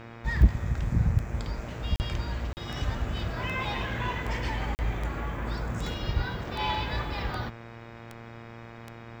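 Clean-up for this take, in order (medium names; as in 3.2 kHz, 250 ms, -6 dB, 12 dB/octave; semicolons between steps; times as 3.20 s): clip repair -10.5 dBFS; de-click; de-hum 115.7 Hz, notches 22; interpolate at 1.96/2.53/4.75 s, 39 ms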